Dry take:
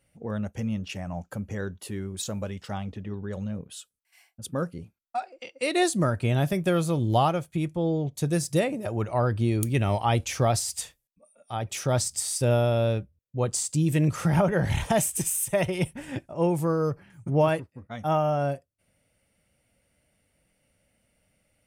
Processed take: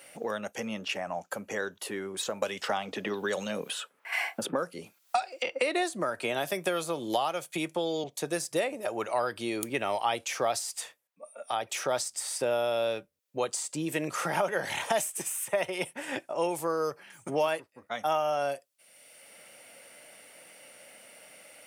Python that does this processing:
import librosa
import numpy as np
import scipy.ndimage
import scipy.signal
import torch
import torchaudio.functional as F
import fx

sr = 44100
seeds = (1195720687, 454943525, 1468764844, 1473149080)

y = fx.band_squash(x, sr, depth_pct=100, at=(2.42, 8.04))
y = scipy.signal.sosfilt(scipy.signal.butter(2, 500.0, 'highpass', fs=sr, output='sos'), y)
y = fx.band_squash(y, sr, depth_pct=70)